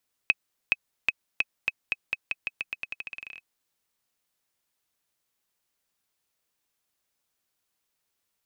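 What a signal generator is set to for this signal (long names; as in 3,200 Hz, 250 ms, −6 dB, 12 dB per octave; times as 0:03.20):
bouncing ball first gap 0.42 s, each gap 0.87, 2,550 Hz, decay 34 ms −7 dBFS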